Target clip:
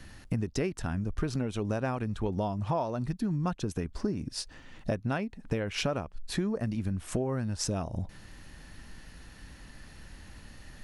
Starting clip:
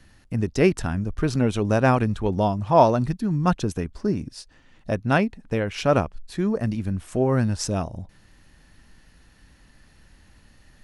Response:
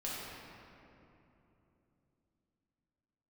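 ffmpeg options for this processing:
-af "acompressor=threshold=-32dB:ratio=16,volume=5dB"

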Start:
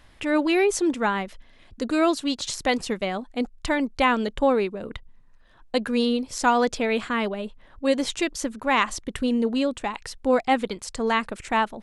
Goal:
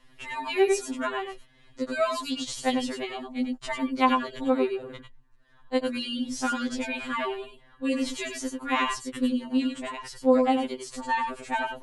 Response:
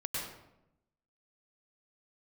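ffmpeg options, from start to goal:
-filter_complex "[1:a]atrim=start_sample=2205,atrim=end_sample=4410[a];[0:a][a]afir=irnorm=-1:irlink=0,afftfilt=real='re*2.45*eq(mod(b,6),0)':imag='im*2.45*eq(mod(b,6),0)':win_size=2048:overlap=0.75"

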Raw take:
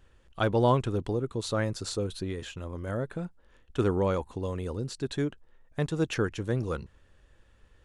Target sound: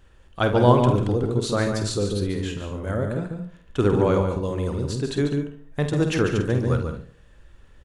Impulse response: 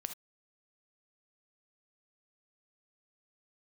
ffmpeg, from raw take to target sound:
-filter_complex "[0:a]asplit=2[a][b];[b]adelay=49,volume=-9dB[c];[a][c]amix=inputs=2:normalize=0,asplit=2[d][e];[e]adelay=74,lowpass=f=2k:p=1,volume=-13dB,asplit=2[f][g];[g]adelay=74,lowpass=f=2k:p=1,volume=0.45,asplit=2[h][i];[i]adelay=74,lowpass=f=2k:p=1,volume=0.45,asplit=2[j][k];[k]adelay=74,lowpass=f=2k:p=1,volume=0.45[l];[d][f][h][j][l]amix=inputs=5:normalize=0,asplit=2[m][n];[1:a]atrim=start_sample=2205,lowshelf=f=380:g=9.5,adelay=143[o];[n][o]afir=irnorm=-1:irlink=0,volume=-6.5dB[p];[m][p]amix=inputs=2:normalize=0,volume=5dB"

